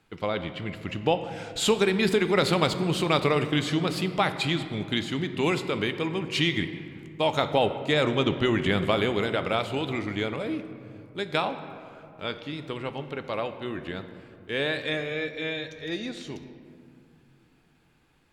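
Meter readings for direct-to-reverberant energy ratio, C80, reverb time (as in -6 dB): 9.0 dB, 11.5 dB, 2.6 s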